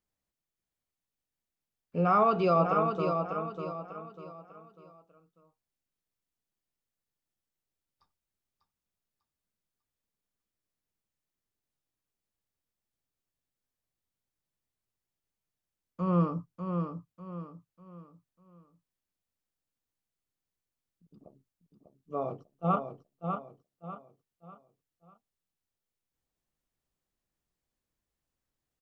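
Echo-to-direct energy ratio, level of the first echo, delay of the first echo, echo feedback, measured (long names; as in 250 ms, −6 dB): −5.5 dB, −6.0 dB, 596 ms, 36%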